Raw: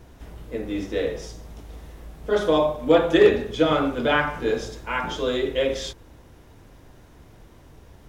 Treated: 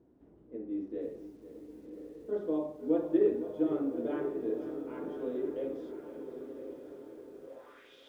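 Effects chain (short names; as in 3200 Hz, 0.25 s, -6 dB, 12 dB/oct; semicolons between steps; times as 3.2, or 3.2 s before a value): added harmonics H 7 -45 dB, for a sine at -6 dBFS; on a send: diffused feedback echo 1.102 s, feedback 50%, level -9.5 dB; on the sum: band-pass sweep 310 Hz -> 3500 Hz, 7.41–7.95; lo-fi delay 0.502 s, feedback 55%, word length 9-bit, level -13 dB; gain -6.5 dB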